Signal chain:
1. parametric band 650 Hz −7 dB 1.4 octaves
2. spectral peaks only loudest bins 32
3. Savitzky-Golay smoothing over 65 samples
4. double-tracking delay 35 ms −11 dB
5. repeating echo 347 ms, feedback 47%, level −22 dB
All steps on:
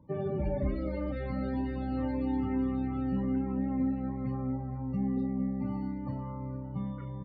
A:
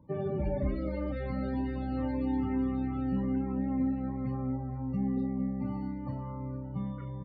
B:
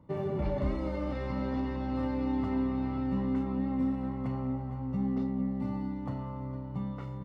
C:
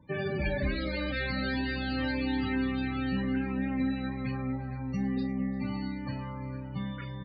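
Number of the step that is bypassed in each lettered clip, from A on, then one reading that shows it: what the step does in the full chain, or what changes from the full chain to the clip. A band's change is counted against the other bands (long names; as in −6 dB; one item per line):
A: 5, echo-to-direct ratio −21.0 dB to none audible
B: 2, 1 kHz band +1.5 dB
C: 3, 2 kHz band +16.0 dB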